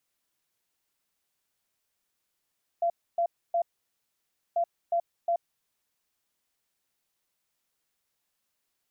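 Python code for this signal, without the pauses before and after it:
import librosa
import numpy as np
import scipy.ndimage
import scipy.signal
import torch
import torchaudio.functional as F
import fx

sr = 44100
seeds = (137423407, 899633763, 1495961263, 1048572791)

y = fx.beep_pattern(sr, wave='sine', hz=684.0, on_s=0.08, off_s=0.28, beeps=3, pause_s=0.94, groups=2, level_db=-22.5)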